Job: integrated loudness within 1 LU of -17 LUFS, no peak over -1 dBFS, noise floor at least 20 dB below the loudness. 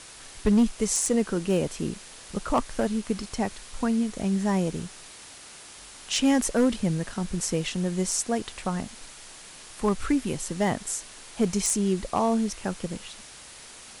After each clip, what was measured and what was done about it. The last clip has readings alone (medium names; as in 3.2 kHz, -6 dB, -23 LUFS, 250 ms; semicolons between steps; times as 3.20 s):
clipped samples 0.4%; clipping level -15.0 dBFS; noise floor -46 dBFS; noise floor target -47 dBFS; loudness -27.0 LUFS; peak level -15.0 dBFS; loudness target -17.0 LUFS
-> clip repair -15 dBFS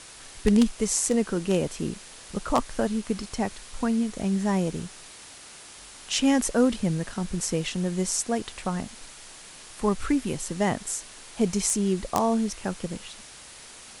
clipped samples 0.0%; noise floor -46 dBFS; noise floor target -47 dBFS
-> noise reduction 6 dB, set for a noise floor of -46 dBFS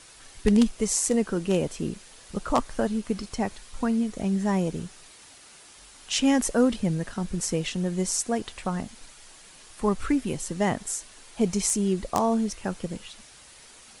noise floor -51 dBFS; loudness -26.5 LUFS; peak level -6.0 dBFS; loudness target -17.0 LUFS
-> trim +9.5 dB; peak limiter -1 dBFS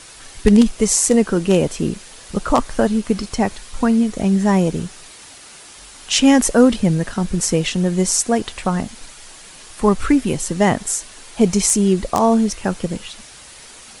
loudness -17.5 LUFS; peak level -1.0 dBFS; noise floor -41 dBFS